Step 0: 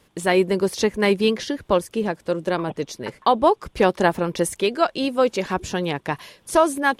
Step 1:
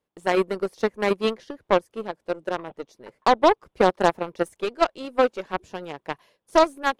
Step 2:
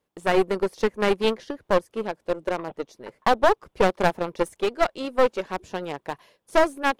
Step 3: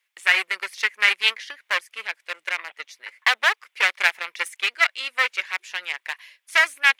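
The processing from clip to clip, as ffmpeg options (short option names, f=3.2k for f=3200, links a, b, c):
-af "equalizer=f=600:w=0.5:g=8.5,agate=range=-7dB:threshold=-41dB:ratio=16:detection=peak,aeval=exprs='1.5*(cos(1*acos(clip(val(0)/1.5,-1,1)))-cos(1*PI/2))+0.473*(cos(2*acos(clip(val(0)/1.5,-1,1)))-cos(2*PI/2))+0.15*(cos(5*acos(clip(val(0)/1.5,-1,1)))-cos(5*PI/2))+0.266*(cos(7*acos(clip(val(0)/1.5,-1,1)))-cos(7*PI/2))+0.0668*(cos(8*acos(clip(val(0)/1.5,-1,1)))-cos(8*PI/2))':c=same,volume=-9.5dB"
-af "aeval=exprs='clip(val(0),-1,0.0668)':c=same,volume=4dB"
-af "highpass=f=2.1k:t=q:w=3.1,volume=6dB"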